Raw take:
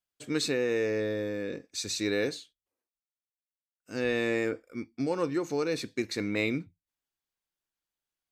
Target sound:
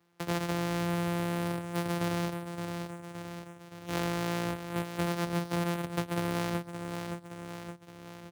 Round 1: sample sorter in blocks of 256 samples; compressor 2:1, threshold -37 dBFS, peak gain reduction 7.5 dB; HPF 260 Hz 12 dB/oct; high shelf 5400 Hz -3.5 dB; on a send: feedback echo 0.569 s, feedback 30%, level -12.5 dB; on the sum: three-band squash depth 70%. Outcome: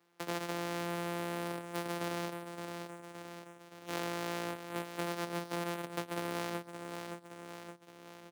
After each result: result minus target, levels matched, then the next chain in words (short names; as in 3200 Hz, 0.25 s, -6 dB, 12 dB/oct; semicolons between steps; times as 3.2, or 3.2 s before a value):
125 Hz band -5.5 dB; compressor: peak gain reduction +3.5 dB
sample sorter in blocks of 256 samples; compressor 2:1, threshold -37 dBFS, peak gain reduction 7.5 dB; HPF 83 Hz 12 dB/oct; high shelf 5400 Hz -3.5 dB; on a send: feedback echo 0.569 s, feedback 30%, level -12.5 dB; on the sum: three-band squash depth 70%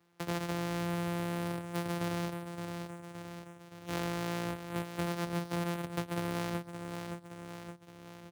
compressor: peak gain reduction +3.5 dB
sample sorter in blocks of 256 samples; compressor 2:1, threshold -30 dBFS, peak gain reduction 4 dB; HPF 83 Hz 12 dB/oct; high shelf 5400 Hz -3.5 dB; on a send: feedback echo 0.569 s, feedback 30%, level -12.5 dB; on the sum: three-band squash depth 70%